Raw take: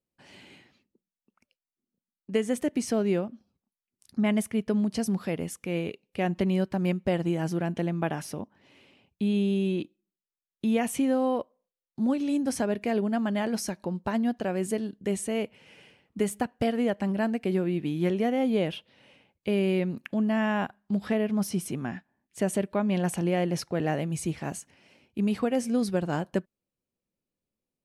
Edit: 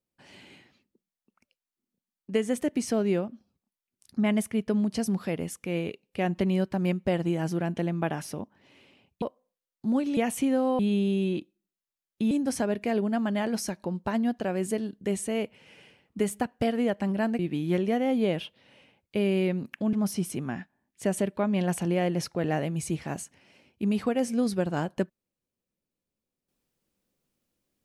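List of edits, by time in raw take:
9.22–10.74 swap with 11.36–12.31
17.39–17.71 cut
20.25–21.29 cut

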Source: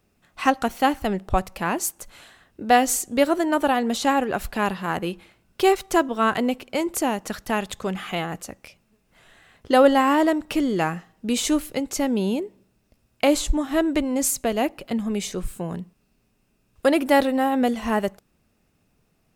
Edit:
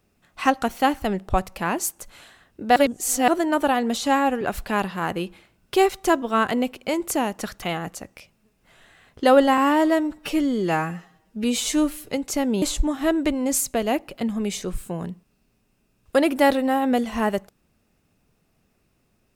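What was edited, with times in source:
2.76–3.28 reverse
4.01–4.28 stretch 1.5×
7.49–8.1 cut
10.05–11.74 stretch 1.5×
12.25–13.32 cut

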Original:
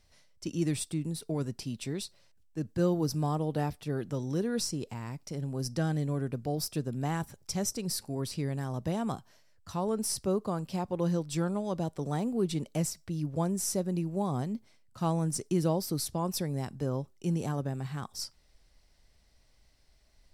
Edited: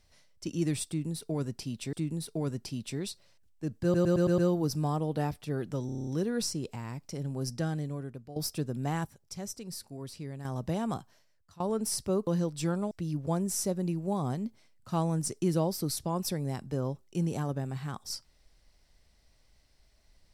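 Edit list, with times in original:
0.87–1.93 loop, 2 plays
2.77 stutter 0.11 s, 6 plays
4.25 stutter 0.03 s, 8 plays
5.6–6.54 fade out, to -14.5 dB
7.23–8.63 gain -7.5 dB
9.15–9.78 fade out, to -20.5 dB
10.45–11 cut
11.64–13 cut

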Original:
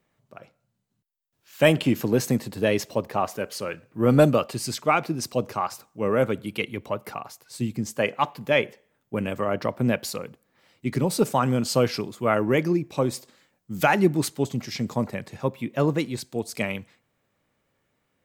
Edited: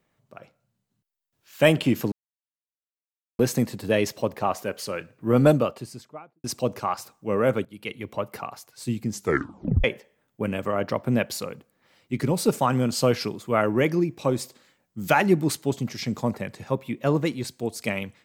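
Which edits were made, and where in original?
2.12 insert silence 1.27 s
4.02–5.17 studio fade out
6.38–6.92 fade in, from -16 dB
7.86 tape stop 0.71 s

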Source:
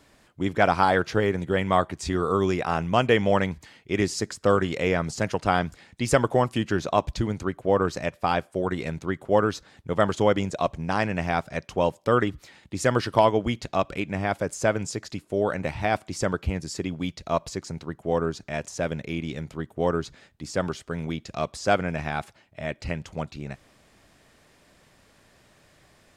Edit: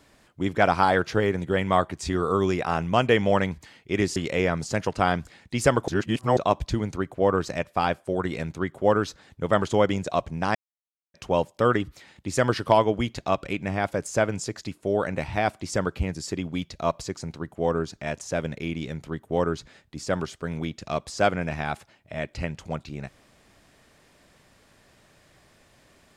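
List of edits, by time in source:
4.16–4.63 cut
6.35–6.84 reverse
11.02–11.61 mute

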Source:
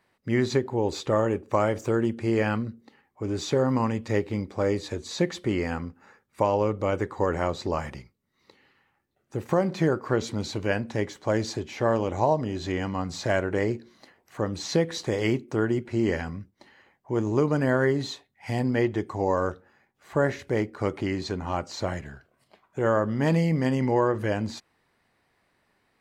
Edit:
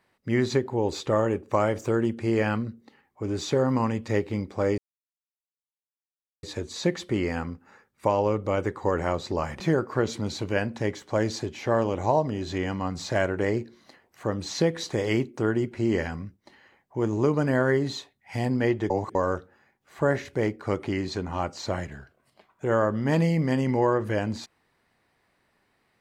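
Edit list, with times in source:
4.78 insert silence 1.65 s
7.95–9.74 cut
19.04–19.29 reverse

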